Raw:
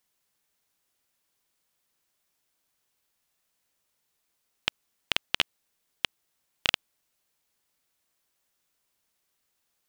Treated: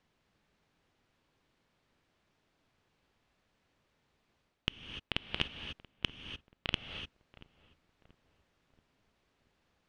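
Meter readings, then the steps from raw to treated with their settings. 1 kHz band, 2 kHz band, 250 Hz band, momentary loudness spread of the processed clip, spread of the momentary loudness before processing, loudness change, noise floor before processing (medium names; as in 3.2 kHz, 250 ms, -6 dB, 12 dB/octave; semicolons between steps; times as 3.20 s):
-8.0 dB, -8.0 dB, +3.0 dB, 10 LU, 6 LU, -8.5 dB, -78 dBFS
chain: low-pass 3.2 kHz 12 dB/octave; bass shelf 440 Hz +11 dB; reverse; compression 10:1, threshold -35 dBFS, peak gain reduction 16.5 dB; reverse; filtered feedback delay 682 ms, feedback 48%, low-pass 1.3 kHz, level -18.5 dB; gated-style reverb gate 320 ms rising, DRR 7 dB; trim +5 dB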